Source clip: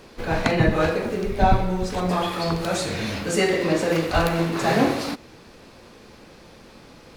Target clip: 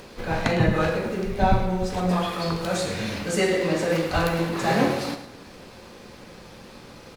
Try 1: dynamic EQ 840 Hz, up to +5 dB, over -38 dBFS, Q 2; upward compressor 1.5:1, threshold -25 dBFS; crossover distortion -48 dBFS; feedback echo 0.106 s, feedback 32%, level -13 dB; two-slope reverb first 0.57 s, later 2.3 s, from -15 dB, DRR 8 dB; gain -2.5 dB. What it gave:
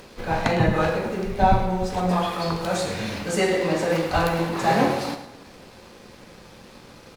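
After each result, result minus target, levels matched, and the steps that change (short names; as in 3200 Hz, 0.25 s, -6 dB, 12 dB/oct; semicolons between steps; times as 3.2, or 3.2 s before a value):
crossover distortion: distortion +5 dB; 1000 Hz band +2.5 dB
change: crossover distortion -54 dBFS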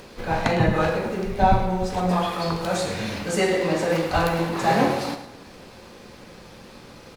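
1000 Hz band +2.5 dB
remove: dynamic EQ 840 Hz, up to +5 dB, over -38 dBFS, Q 2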